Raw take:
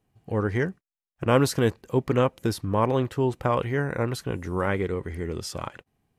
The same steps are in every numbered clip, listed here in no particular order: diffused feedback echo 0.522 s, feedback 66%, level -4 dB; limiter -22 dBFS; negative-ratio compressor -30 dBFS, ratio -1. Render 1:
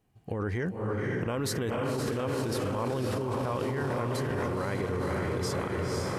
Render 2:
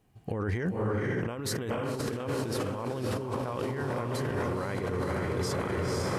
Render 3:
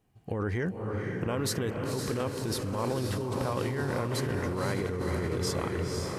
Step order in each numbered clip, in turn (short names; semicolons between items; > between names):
diffused feedback echo > limiter > negative-ratio compressor; diffused feedback echo > negative-ratio compressor > limiter; limiter > diffused feedback echo > negative-ratio compressor